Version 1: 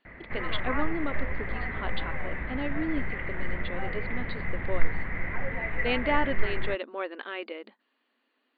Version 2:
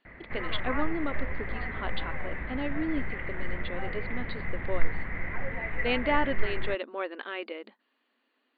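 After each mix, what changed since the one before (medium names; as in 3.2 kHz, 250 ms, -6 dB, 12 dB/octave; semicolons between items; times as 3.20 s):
background: send -9.5 dB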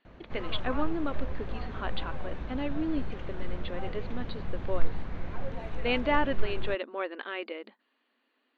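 background: remove resonant low-pass 2 kHz, resonance Q 12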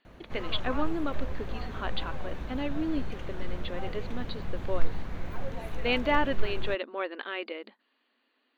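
master: remove distance through air 130 m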